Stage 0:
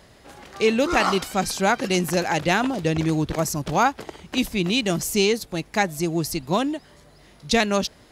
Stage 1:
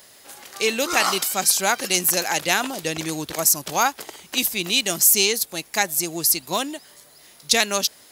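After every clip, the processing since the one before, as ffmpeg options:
ffmpeg -i in.wav -af "aemphasis=mode=production:type=riaa,volume=-1dB" out.wav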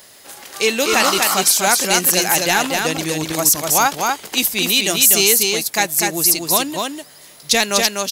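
ffmpeg -i in.wav -filter_complex "[0:a]apsyclip=10dB,asplit=2[link_01][link_02];[link_02]aecho=0:1:247:0.668[link_03];[link_01][link_03]amix=inputs=2:normalize=0,volume=-5.5dB" out.wav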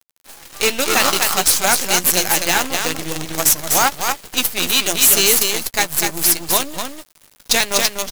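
ffmpeg -i in.wav -filter_complex "[0:a]acrusher=bits=3:dc=4:mix=0:aa=0.000001,asplit=2[link_01][link_02];[link_02]adelay=12,volume=-11.5dB[link_03];[link_01][link_03]amix=inputs=2:normalize=0,volume=-1dB" out.wav

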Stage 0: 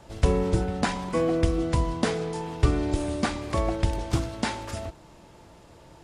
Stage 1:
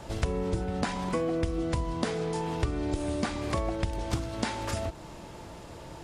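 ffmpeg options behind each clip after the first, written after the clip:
ffmpeg -i in.wav -af "acompressor=threshold=-35dB:ratio=4,volume=6.5dB" out.wav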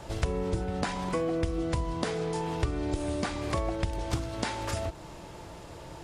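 ffmpeg -i in.wav -af "equalizer=frequency=230:width_type=o:width=0.28:gain=-6.5" out.wav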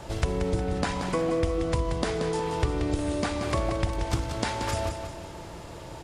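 ffmpeg -i in.wav -af "aecho=1:1:180|360|540|720|900:0.422|0.19|0.0854|0.0384|0.0173,volume=2.5dB" out.wav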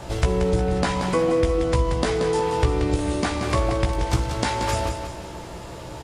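ffmpeg -i in.wav -filter_complex "[0:a]asplit=2[link_01][link_02];[link_02]adelay=16,volume=-6dB[link_03];[link_01][link_03]amix=inputs=2:normalize=0,volume=4dB" out.wav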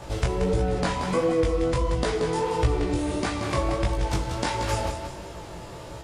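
ffmpeg -i in.wav -af "flanger=delay=17.5:depth=6.7:speed=1.5" out.wav

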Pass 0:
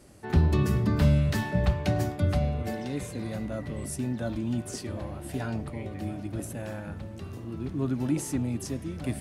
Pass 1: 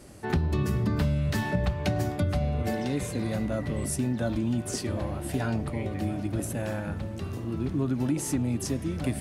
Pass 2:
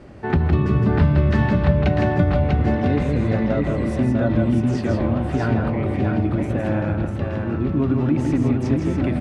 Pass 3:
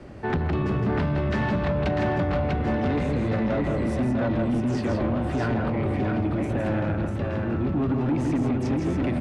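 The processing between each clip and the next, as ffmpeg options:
ffmpeg -i in.wav -af "acompressor=threshold=-28dB:ratio=6,volume=5dB" out.wav
ffmpeg -i in.wav -filter_complex "[0:a]lowpass=2400,asplit=2[link_01][link_02];[link_02]aecho=0:1:162|646:0.596|0.631[link_03];[link_01][link_03]amix=inputs=2:normalize=0,volume=7dB" out.wav
ffmpeg -i in.wav -filter_complex "[0:a]acrossover=split=210|760|1900[link_01][link_02][link_03][link_04];[link_01]alimiter=limit=-18.5dB:level=0:latency=1:release=420[link_05];[link_05][link_02][link_03][link_04]amix=inputs=4:normalize=0,asoftclip=type=tanh:threshold=-19dB" out.wav

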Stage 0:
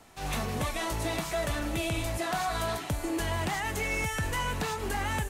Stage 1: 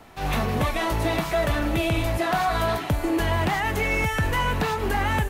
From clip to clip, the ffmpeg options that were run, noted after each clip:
ffmpeg -i in.wav -af "equalizer=frequency=7900:width=0.72:gain=-10.5,volume=8dB" out.wav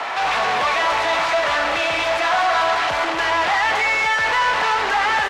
ffmpeg -i in.wav -filter_complex "[0:a]asplit=2[link_01][link_02];[link_02]highpass=frequency=720:poles=1,volume=35dB,asoftclip=type=tanh:threshold=-14.5dB[link_03];[link_01][link_03]amix=inputs=2:normalize=0,lowpass=frequency=1900:poles=1,volume=-6dB,acrossover=split=590 7400:gain=0.112 1 0.1[link_04][link_05][link_06];[link_04][link_05][link_06]amix=inputs=3:normalize=0,aecho=1:1:233:0.422,volume=4dB" out.wav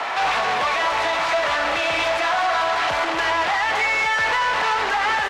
ffmpeg -i in.wav -af "alimiter=limit=-12dB:level=0:latency=1:release=136" out.wav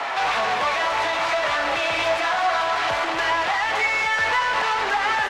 ffmpeg -i in.wav -af "flanger=delay=7:depth=4:regen=71:speed=0.6:shape=triangular,volume=3dB" out.wav

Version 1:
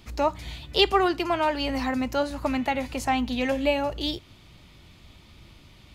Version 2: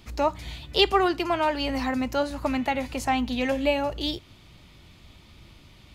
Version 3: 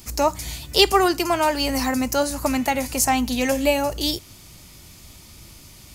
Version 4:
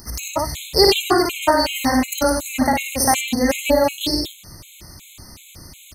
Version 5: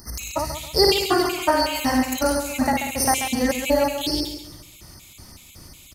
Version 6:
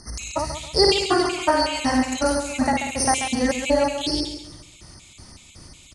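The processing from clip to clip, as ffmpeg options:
ffmpeg -i in.wav -af anull out.wav
ffmpeg -i in.wav -af "aexciter=amount=2.6:drive=9.8:freq=5100,volume=4dB" out.wav
ffmpeg -i in.wav -filter_complex "[0:a]acompressor=mode=upward:threshold=-42dB:ratio=2.5,asplit=2[link_01][link_02];[link_02]aecho=0:1:55.39|96.21|163.3:0.631|0.708|0.398[link_03];[link_01][link_03]amix=inputs=2:normalize=0,afftfilt=real='re*gt(sin(2*PI*2.7*pts/sr)*(1-2*mod(floor(b*sr/1024/2100),2)),0)':imag='im*gt(sin(2*PI*2.7*pts/sr)*(1-2*mod(floor(b*sr/1024/2100),2)),0)':win_size=1024:overlap=0.75,volume=3dB" out.wav
ffmpeg -i in.wav -af "aecho=1:1:136|272|408|544:0.355|0.128|0.046|0.0166,volume=-3.5dB" out.wav
ffmpeg -i in.wav -af "aresample=22050,aresample=44100" out.wav

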